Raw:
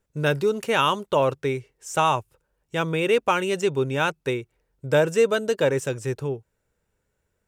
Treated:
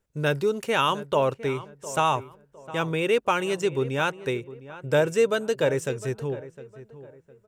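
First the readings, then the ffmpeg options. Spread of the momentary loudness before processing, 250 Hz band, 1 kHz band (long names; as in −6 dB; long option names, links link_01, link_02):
9 LU, −2.0 dB, −2.0 dB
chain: -filter_complex "[0:a]asplit=2[link_01][link_02];[link_02]adelay=708,lowpass=frequency=1800:poles=1,volume=-15.5dB,asplit=2[link_03][link_04];[link_04]adelay=708,lowpass=frequency=1800:poles=1,volume=0.33,asplit=2[link_05][link_06];[link_06]adelay=708,lowpass=frequency=1800:poles=1,volume=0.33[link_07];[link_01][link_03][link_05][link_07]amix=inputs=4:normalize=0,volume=-2dB"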